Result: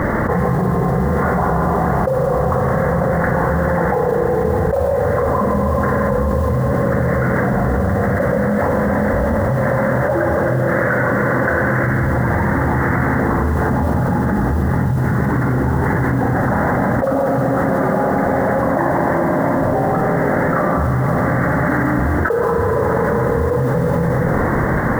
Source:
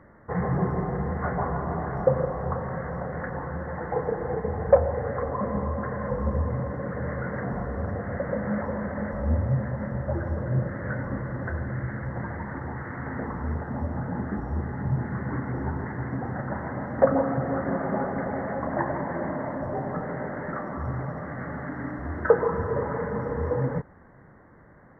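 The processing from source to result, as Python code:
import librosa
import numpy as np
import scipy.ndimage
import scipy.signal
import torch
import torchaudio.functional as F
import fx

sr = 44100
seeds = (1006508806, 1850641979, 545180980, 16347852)

y = fx.highpass(x, sr, hz=440.0, slope=6, at=(9.24, 11.87))
y = fx.mod_noise(y, sr, seeds[0], snr_db=31)
y = fx.rev_schroeder(y, sr, rt60_s=1.4, comb_ms=32, drr_db=4.5)
y = fx.env_flatten(y, sr, amount_pct=100)
y = y * librosa.db_to_amplitude(-5.0)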